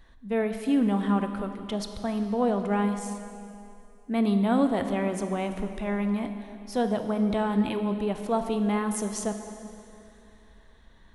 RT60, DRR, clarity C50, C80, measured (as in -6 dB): 2.8 s, 7.0 dB, 8.0 dB, 8.5 dB